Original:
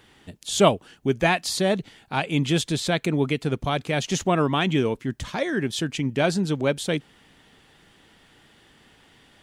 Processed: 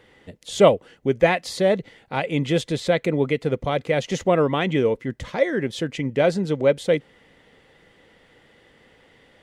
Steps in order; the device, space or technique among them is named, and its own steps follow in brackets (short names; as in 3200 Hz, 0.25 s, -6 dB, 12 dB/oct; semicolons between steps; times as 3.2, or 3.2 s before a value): inside a helmet (high shelf 4900 Hz -8 dB; small resonant body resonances 510/2000 Hz, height 12 dB, ringing for 30 ms); gain -1 dB